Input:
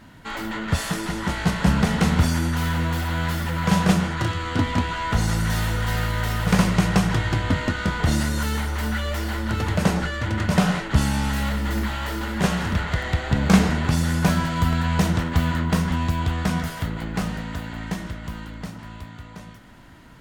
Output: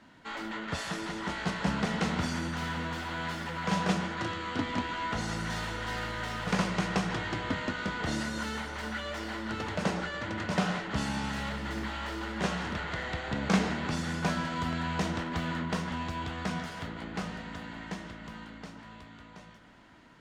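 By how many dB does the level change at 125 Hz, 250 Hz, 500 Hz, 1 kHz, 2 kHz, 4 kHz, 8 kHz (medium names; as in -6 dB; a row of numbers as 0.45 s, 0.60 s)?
-14.5 dB, -10.0 dB, -7.0 dB, -7.0 dB, -6.5 dB, -7.0 dB, -10.5 dB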